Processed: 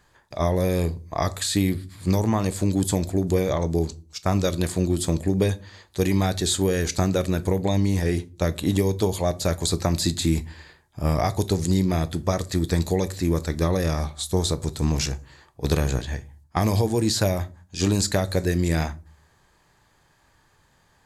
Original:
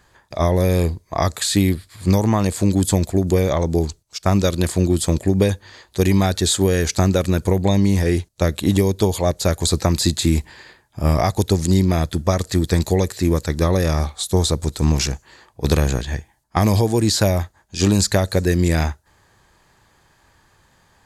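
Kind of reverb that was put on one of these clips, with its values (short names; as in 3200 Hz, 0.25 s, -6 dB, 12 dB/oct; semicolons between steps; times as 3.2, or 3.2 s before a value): shoebox room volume 170 m³, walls furnished, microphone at 0.38 m; gain -5 dB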